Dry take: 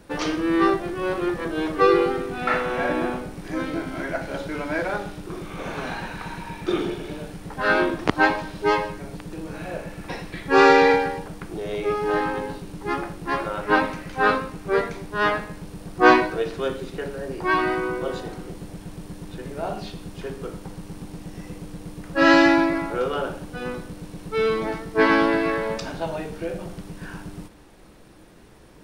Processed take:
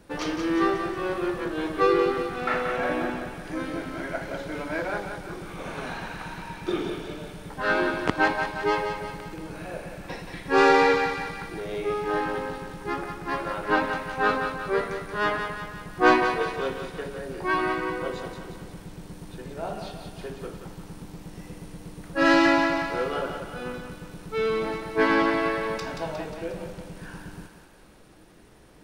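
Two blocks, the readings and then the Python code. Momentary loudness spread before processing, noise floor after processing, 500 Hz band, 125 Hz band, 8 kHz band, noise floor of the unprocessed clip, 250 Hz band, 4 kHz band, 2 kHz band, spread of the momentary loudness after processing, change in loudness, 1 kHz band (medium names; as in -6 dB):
19 LU, -47 dBFS, -3.5 dB, -4.0 dB, -2.0 dB, -44 dBFS, -4.0 dB, -2.5 dB, -3.0 dB, 19 LU, -3.5 dB, -3.0 dB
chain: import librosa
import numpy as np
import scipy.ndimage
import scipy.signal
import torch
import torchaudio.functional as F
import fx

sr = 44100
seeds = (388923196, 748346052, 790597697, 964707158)

y = fx.tracing_dist(x, sr, depth_ms=0.027)
y = fx.echo_thinned(y, sr, ms=179, feedback_pct=57, hz=420.0, wet_db=-6)
y = y * librosa.db_to_amplitude(-4.0)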